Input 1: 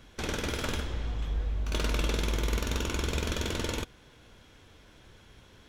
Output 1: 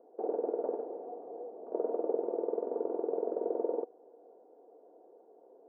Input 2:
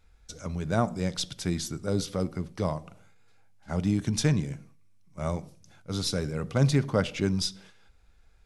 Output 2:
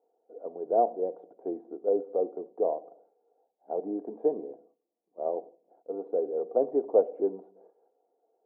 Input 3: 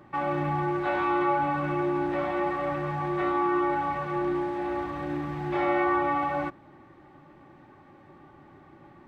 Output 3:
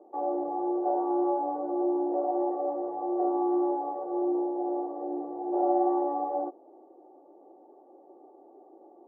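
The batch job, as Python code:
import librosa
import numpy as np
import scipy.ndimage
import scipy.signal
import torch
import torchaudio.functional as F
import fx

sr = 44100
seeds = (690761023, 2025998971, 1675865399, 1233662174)

y = scipy.signal.sosfilt(scipy.signal.ellip(3, 1.0, 80, [340.0, 770.0], 'bandpass', fs=sr, output='sos'), x)
y = fx.air_absorb(y, sr, metres=160.0)
y = y + 0.43 * np.pad(y, (int(4.3 * sr / 1000.0), 0))[:len(y)]
y = y * 10.0 ** (6.0 / 20.0)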